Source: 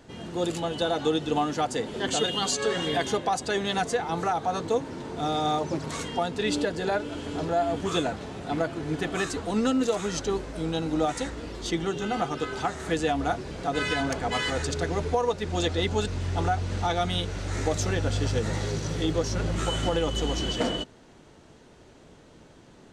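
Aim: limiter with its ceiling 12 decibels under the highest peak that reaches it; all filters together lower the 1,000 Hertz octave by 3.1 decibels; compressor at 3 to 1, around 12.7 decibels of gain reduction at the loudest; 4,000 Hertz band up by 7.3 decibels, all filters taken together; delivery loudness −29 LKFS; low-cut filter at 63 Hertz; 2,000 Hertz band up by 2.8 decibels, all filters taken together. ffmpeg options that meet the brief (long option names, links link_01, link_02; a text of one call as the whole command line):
ffmpeg -i in.wav -af "highpass=63,equalizer=frequency=1000:width_type=o:gain=-6,equalizer=frequency=2000:width_type=o:gain=3.5,equalizer=frequency=4000:width_type=o:gain=8.5,acompressor=threshold=-37dB:ratio=3,volume=13.5dB,alimiter=limit=-20.5dB:level=0:latency=1" out.wav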